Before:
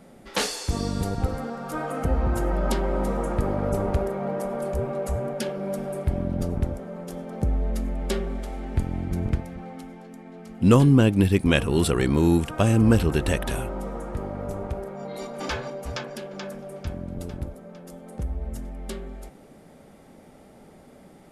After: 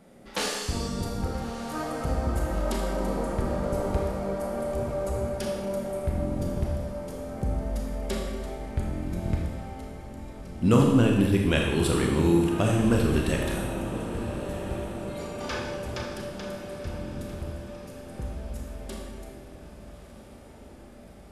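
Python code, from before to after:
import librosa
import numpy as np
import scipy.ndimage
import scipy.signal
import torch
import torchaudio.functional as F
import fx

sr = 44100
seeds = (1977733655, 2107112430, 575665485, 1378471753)

p1 = x + fx.echo_diffused(x, sr, ms=1255, feedback_pct=60, wet_db=-13.0, dry=0)
p2 = fx.rev_schroeder(p1, sr, rt60_s=1.2, comb_ms=26, drr_db=0.0)
y = p2 * librosa.db_to_amplitude(-5.0)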